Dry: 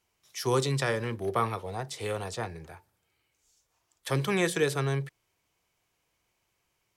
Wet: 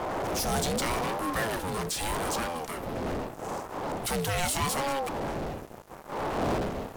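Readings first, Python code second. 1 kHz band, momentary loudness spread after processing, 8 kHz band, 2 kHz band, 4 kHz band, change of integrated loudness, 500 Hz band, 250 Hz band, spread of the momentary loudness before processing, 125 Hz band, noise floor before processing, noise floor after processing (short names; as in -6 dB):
+5.5 dB, 8 LU, +7.0 dB, +1.0 dB, +3.5 dB, -0.5 dB, 0.0 dB, +2.0 dB, 13 LU, -3.0 dB, -77 dBFS, -46 dBFS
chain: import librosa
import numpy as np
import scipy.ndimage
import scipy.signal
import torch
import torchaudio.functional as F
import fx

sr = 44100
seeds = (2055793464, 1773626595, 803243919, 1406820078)

p1 = fx.dmg_wind(x, sr, seeds[0], corner_hz=370.0, level_db=-35.0)
p2 = fx.high_shelf(p1, sr, hz=5400.0, db=12.0)
p3 = fx.fuzz(p2, sr, gain_db=46.0, gate_db=-55.0)
p4 = p2 + (p3 * librosa.db_to_amplitude(-9.5))
p5 = fx.ring_lfo(p4, sr, carrier_hz=500.0, swing_pct=40, hz=0.82)
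y = p5 * librosa.db_to_amplitude(-6.5)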